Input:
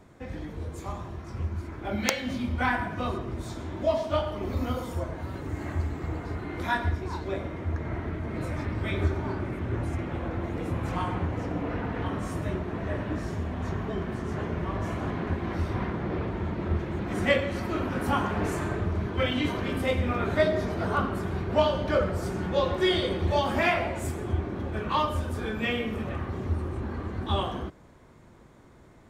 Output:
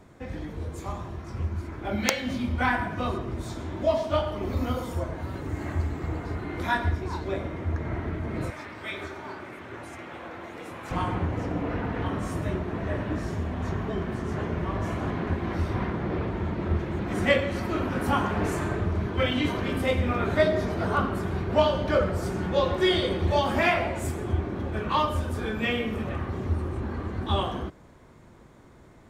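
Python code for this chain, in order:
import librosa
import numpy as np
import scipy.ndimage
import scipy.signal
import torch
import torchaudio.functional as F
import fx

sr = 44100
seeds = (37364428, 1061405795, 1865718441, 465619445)

y = fx.highpass(x, sr, hz=970.0, slope=6, at=(8.5, 10.91))
y = y * 10.0 ** (1.5 / 20.0)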